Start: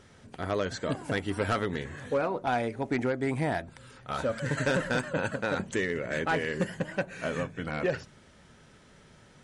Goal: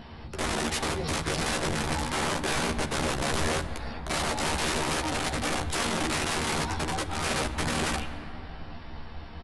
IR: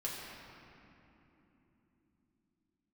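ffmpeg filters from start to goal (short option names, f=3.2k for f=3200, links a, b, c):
-filter_complex "[0:a]asplit=2[a][b];[b]alimiter=level_in=6dB:limit=-24dB:level=0:latency=1:release=65,volume=-6dB,volume=-2dB[c];[a][c]amix=inputs=2:normalize=0,asubboost=boost=4.5:cutoff=87,acompressor=threshold=-28dB:ratio=8,aeval=exprs='(mod(33.5*val(0)+1,2)-1)/33.5':c=same,asetrate=22696,aresample=44100,atempo=1.94306,asplit=2[d][e];[e]adelay=13,volume=-3.5dB[f];[d][f]amix=inputs=2:normalize=0,asplit=2[g][h];[1:a]atrim=start_sample=2205,asetrate=37485,aresample=44100[i];[h][i]afir=irnorm=-1:irlink=0,volume=-10dB[j];[g][j]amix=inputs=2:normalize=0,volume=4.5dB"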